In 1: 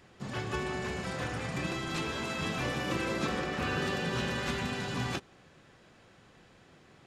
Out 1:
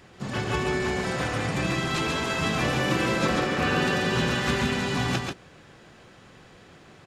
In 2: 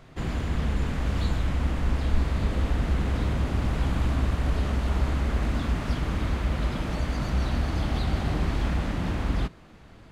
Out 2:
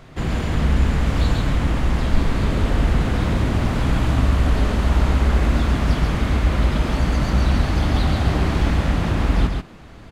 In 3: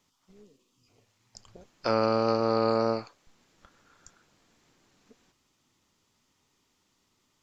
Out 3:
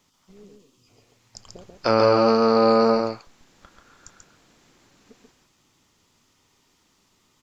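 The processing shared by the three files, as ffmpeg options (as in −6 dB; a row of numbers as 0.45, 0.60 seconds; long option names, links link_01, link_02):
-af "aecho=1:1:137:0.631,volume=6.5dB"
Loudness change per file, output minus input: +8.0, +7.5, +8.0 LU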